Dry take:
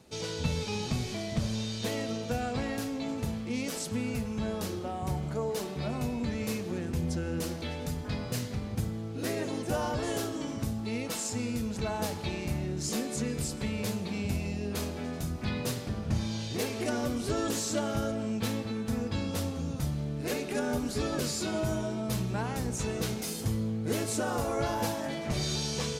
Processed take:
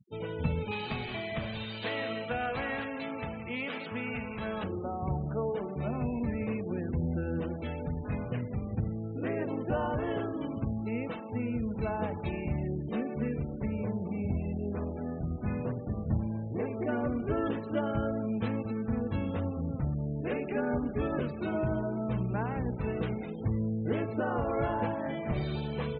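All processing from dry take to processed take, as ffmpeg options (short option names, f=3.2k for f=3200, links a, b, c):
-filter_complex "[0:a]asettb=1/sr,asplit=3[a][b][c];[a]atrim=end=0.714[d];[b]atrim=start=0.71:end=4.64,asetpts=PTS-STARTPTS,afade=t=in:d=0.004:c=qsin,afade=t=out:st=3.926:d=0.004:c=qsin,tiltshelf=f=640:g=-8.5,aecho=1:1:165|189:0.224|0.299,atrim=end_sample=173313[e];[c]atrim=start=4.636[f];[d][e]acrossfade=d=0.004:c1=hsin:c2=qsin[g];[g][f]acrossfade=d=0.004:c1=qsin:c2=hsin,asettb=1/sr,asplit=3[h][i][j];[h]atrim=end=13.524[k];[i]atrim=start=13.52:end=16.89,asetpts=PTS-STARTPTS,afade=t=in:d=0.004:c=qsin,afade=t=out:st=3.366:d=0.004:c=qsin,lowpass=f=3.2k:w=0.5412,lowpass=f=3.2k:w=1.3066,highshelf=f=2.5k:g=-11.5[l];[j]atrim=start=16.886[m];[k][l]acrossfade=d=0.004:c1=hsin:c2=qsin[n];[n][m]acrossfade=d=0.004:c1=qsin:c2=hsin,lowpass=f=3.2k:w=0.5412,lowpass=f=3.2k:w=1.3066,aemphasis=mode=reproduction:type=50fm,afftfilt=real='re*gte(hypot(re,im),0.00891)':imag='im*gte(hypot(re,im),0.00891)':win_size=1024:overlap=0.75"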